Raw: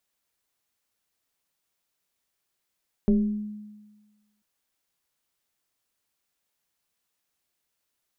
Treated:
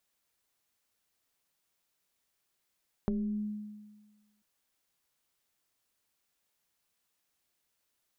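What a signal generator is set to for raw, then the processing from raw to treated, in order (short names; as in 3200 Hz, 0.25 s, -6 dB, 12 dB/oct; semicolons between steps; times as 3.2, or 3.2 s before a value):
FM tone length 1.34 s, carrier 210 Hz, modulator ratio 0.9, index 0.85, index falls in 0.79 s exponential, decay 1.34 s, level -15 dB
compressor 12:1, threshold -30 dBFS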